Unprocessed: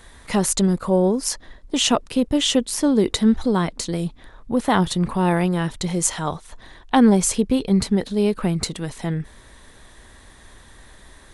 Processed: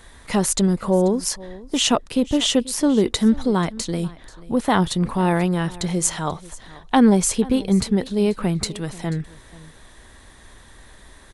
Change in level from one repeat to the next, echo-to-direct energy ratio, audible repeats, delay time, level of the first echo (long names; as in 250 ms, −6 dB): repeats not evenly spaced, −20.0 dB, 1, 486 ms, −20.0 dB